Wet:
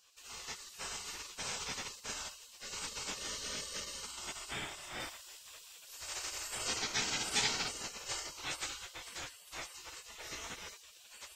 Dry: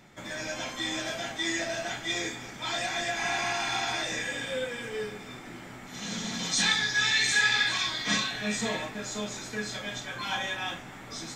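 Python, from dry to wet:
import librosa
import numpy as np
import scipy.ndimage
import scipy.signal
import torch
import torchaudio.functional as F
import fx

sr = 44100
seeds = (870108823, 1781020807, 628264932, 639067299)

y = fx.spec_gate(x, sr, threshold_db=-20, keep='weak')
y = fx.high_shelf(y, sr, hz=7200.0, db=7.0, at=(5.0, 6.57))
y = F.gain(torch.from_numpy(y), 1.0).numpy()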